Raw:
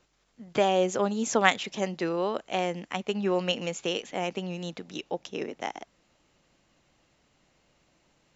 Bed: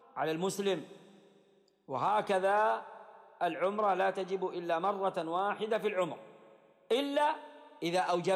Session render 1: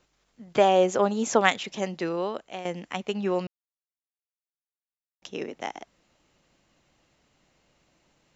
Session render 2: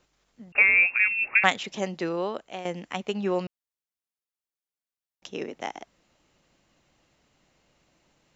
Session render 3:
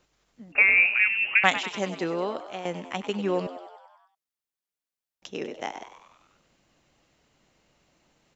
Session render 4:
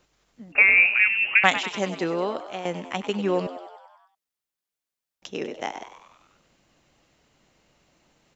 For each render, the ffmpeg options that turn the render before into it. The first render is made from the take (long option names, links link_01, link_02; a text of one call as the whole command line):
ffmpeg -i in.wav -filter_complex "[0:a]asettb=1/sr,asplit=3[link_01][link_02][link_03];[link_01]atrim=end=0.584[link_04];[link_02]atrim=start=0.58:end=1.41,asetpts=PTS-STARTPTS,afade=type=in:duration=0.004:curve=qsin,afade=type=out:start_time=0.826:duration=0.004:curve=qsin,equalizer=frequency=770:width=0.48:gain=5[link_05];[link_03]atrim=start=1.406[link_06];[link_04][link_05]acrossfade=duration=0.004:curve1=hsin:curve2=qsin[link_07];[link_07][link_06]acrossfade=duration=0.004:curve1=qsin:curve2=hsin,asplit=4[link_08][link_09][link_10][link_11];[link_08]atrim=end=2.65,asetpts=PTS-STARTPTS,afade=type=out:start_time=2.18:duration=0.47:silence=0.266073[link_12];[link_09]atrim=start=2.65:end=3.47,asetpts=PTS-STARTPTS,afade=type=in:duration=0.004:curve=hsin:silence=0.266073,afade=type=out:start_time=0.816:duration=0.004:curve=hsin[link_13];[link_10]atrim=start=3.47:end=5.22,asetpts=PTS-STARTPTS,volume=0[link_14];[link_11]atrim=start=5.22,asetpts=PTS-STARTPTS,afade=type=in:duration=0.004:curve=hsin[link_15];[link_12][link_13][link_14][link_15]concat=n=4:v=0:a=1" out.wav
ffmpeg -i in.wav -filter_complex "[0:a]asettb=1/sr,asplit=3[link_01][link_02][link_03];[link_01]atrim=end=0.524[link_04];[link_02]atrim=start=0.52:end=1.44,asetpts=PTS-STARTPTS,afade=type=in:duration=0.004:curve=qsin,afade=type=out:start_time=0.916:duration=0.004:curve=qsin,lowpass=frequency=2500:width_type=q:width=0.5098,lowpass=frequency=2500:width_type=q:width=0.6013,lowpass=frequency=2500:width_type=q:width=0.9,lowpass=frequency=2500:width_type=q:width=2.563,afreqshift=-2900[link_05];[link_03]atrim=start=1.436[link_06];[link_04][link_05]acrossfade=duration=0.004:curve1=hsin:curve2=qsin[link_07];[link_07][link_06]acrossfade=duration=0.004:curve1=qsin:curve2=hsin" out.wav
ffmpeg -i in.wav -filter_complex "[0:a]asplit=8[link_01][link_02][link_03][link_04][link_05][link_06][link_07][link_08];[link_02]adelay=97,afreqshift=86,volume=-12dB[link_09];[link_03]adelay=194,afreqshift=172,volume=-16.4dB[link_10];[link_04]adelay=291,afreqshift=258,volume=-20.9dB[link_11];[link_05]adelay=388,afreqshift=344,volume=-25.3dB[link_12];[link_06]adelay=485,afreqshift=430,volume=-29.7dB[link_13];[link_07]adelay=582,afreqshift=516,volume=-34.2dB[link_14];[link_08]adelay=679,afreqshift=602,volume=-38.6dB[link_15];[link_01][link_09][link_10][link_11][link_12][link_13][link_14][link_15]amix=inputs=8:normalize=0" out.wav
ffmpeg -i in.wav -af "volume=2.5dB,alimiter=limit=-1dB:level=0:latency=1" out.wav